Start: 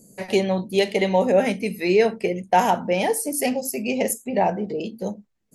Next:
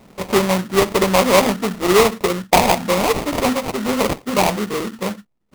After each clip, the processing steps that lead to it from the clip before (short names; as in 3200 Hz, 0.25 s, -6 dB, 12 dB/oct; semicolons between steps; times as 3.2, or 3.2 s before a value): sample-rate reducer 1600 Hz, jitter 20%; gain +4.5 dB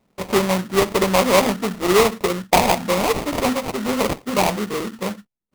gate -39 dBFS, range -16 dB; gain -2 dB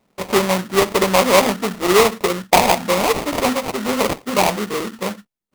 low shelf 240 Hz -5.5 dB; gain +3 dB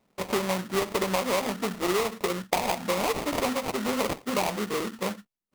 compressor 10:1, threshold -17 dBFS, peak gain reduction 10 dB; gain -5.5 dB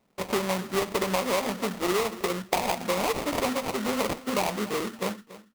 feedback echo 0.283 s, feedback 26%, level -17 dB